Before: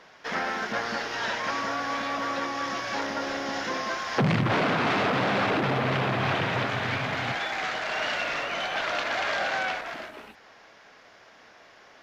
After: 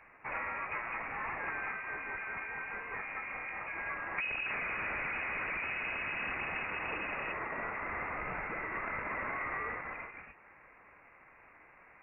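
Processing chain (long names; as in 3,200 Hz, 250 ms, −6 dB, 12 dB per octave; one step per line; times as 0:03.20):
variable-slope delta modulation 32 kbit/s
downward compressor, threshold −28 dBFS, peak gain reduction 8.5 dB
voice inversion scrambler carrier 2,700 Hz
0:01.72–0:03.78: two-band tremolo in antiphase 4.8 Hz, depth 50%, crossover 2,000 Hz
level −5.5 dB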